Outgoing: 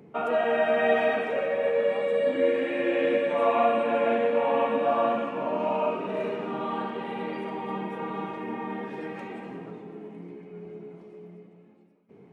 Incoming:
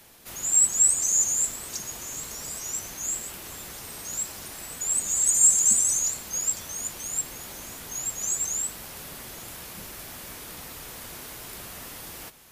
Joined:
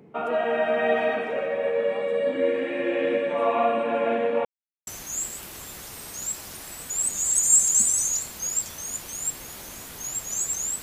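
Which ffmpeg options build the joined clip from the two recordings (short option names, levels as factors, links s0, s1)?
-filter_complex "[0:a]apad=whole_dur=10.82,atrim=end=10.82,asplit=2[s0][s1];[s0]atrim=end=4.45,asetpts=PTS-STARTPTS,afade=t=out:st=4.446:d=0.004:c=hsin[s2];[s1]atrim=start=4.45:end=4.87,asetpts=PTS-STARTPTS,volume=0[s3];[1:a]atrim=start=2.78:end=8.73,asetpts=PTS-STARTPTS,afade=t=in:d=0.004:c=hsin[s4];[s2][s3][s4]concat=n=3:v=0:a=1"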